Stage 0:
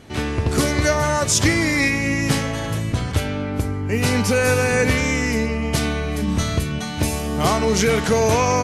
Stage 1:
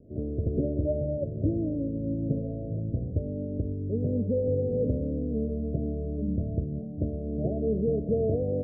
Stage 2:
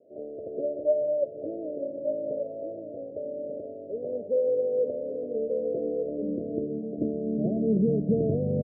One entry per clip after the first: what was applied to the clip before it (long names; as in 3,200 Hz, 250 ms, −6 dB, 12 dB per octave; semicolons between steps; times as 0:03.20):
Butterworth low-pass 640 Hz 96 dB per octave; level −7.5 dB
high-pass filter sweep 580 Hz → 140 Hz, 0:04.87–0:08.54; high-frequency loss of the air 490 metres; on a send: single-tap delay 1,187 ms −6.5 dB